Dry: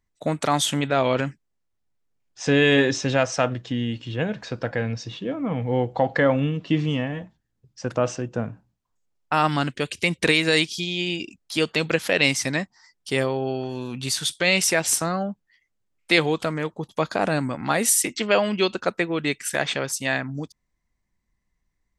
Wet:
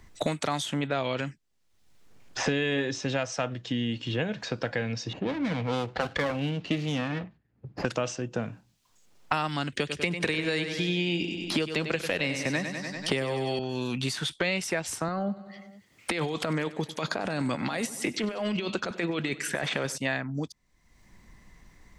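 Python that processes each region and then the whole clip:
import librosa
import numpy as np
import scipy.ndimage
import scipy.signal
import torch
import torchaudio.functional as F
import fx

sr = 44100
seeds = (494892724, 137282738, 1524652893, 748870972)

y = fx.chain(x, sr, fx.lower_of_two(delay_ms=0.44),
    fx.highpass(hz=60.0, slope=12),
    fx.env_lowpass(base_hz=1200.0, full_db=-19.0), at=(5.13, 7.85))
y = fx.chain(y, sr, fx.echo_feedback(ms=97, feedback_pct=48, wet_db=-10),
    fx.band_squash(depth_pct=70), at=(9.72, 13.59))
y = fx.chain(y, sr, fx.highpass(hz=96.0, slope=12),
    fx.over_compress(threshold_db=-28.0, ratio=-1.0),
    fx.echo_feedback(ms=95, feedback_pct=58, wet_db=-18.5), at=(15.08, 19.98))
y = fx.high_shelf(y, sr, hz=8100.0, db=-8.0)
y = fx.band_squash(y, sr, depth_pct=100)
y = y * 10.0 ** (-6.0 / 20.0)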